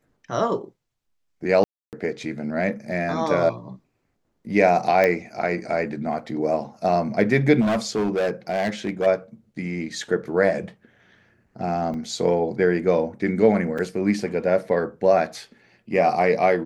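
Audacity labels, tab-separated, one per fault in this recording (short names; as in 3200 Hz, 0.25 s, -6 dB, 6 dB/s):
1.640000	1.930000	gap 0.288 s
5.040000	5.040000	pop -9 dBFS
7.600000	9.070000	clipped -18.5 dBFS
11.940000	11.940000	gap 2.1 ms
13.780000	13.790000	gap 5.1 ms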